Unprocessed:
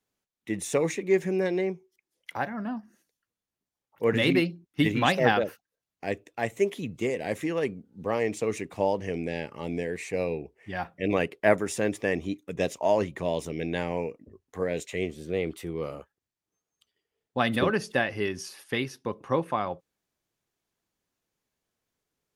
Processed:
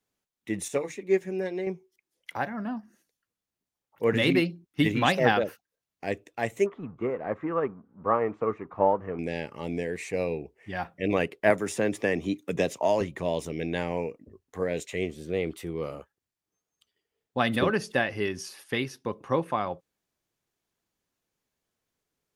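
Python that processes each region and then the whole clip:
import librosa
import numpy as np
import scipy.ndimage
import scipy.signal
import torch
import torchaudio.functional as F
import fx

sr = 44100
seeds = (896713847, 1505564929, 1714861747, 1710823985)

y = fx.chain(x, sr, fx.notch_comb(f0_hz=160.0),
    fx.upward_expand(threshold_db=-31.0, expansion=1.5), at=(0.68, 1.67))
y = fx.chain(y, sr, fx.law_mismatch(coded='mu'),
    fx.lowpass_res(hz=1200.0, q=4.1),
    fx.upward_expand(threshold_db=-37.0, expansion=1.5), at=(6.66, 9.19))
y = fx.chain(y, sr, fx.highpass(hz=81.0, slope=12),
    fx.band_squash(depth_pct=70), at=(11.5, 13.01))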